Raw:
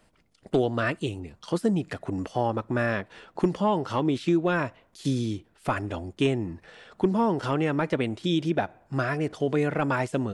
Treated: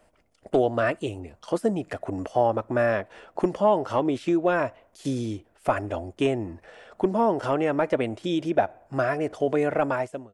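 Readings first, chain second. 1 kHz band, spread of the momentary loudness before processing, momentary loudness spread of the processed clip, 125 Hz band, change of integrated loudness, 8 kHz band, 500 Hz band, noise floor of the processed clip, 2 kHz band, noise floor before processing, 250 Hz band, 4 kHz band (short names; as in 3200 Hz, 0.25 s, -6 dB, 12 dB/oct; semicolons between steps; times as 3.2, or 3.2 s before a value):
+3.0 dB, 9 LU, 10 LU, -4.5 dB, +1.5 dB, -1.0 dB, +4.0 dB, -63 dBFS, -0.5 dB, -64 dBFS, -1.0 dB, -3.5 dB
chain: ending faded out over 0.55 s; fifteen-band EQ 160 Hz -7 dB, 630 Hz +8 dB, 4000 Hz -6 dB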